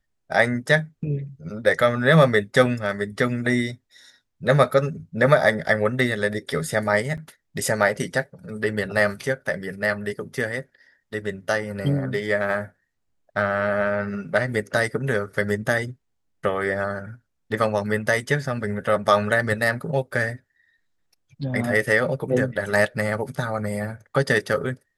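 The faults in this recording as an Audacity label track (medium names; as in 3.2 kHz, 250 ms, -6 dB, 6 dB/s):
7.170000	7.180000	dropout 7.2 ms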